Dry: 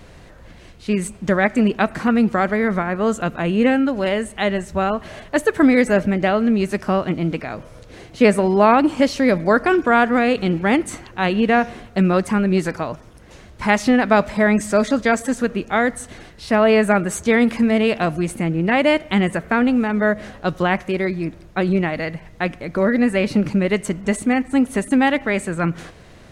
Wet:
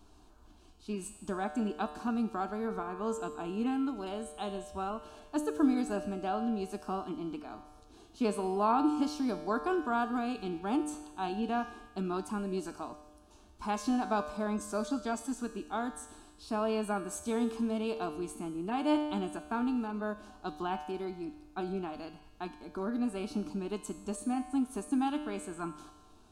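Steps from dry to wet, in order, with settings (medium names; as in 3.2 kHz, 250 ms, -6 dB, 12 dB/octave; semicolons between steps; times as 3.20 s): static phaser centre 530 Hz, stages 6; feedback comb 150 Hz, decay 1.2 s, mix 80%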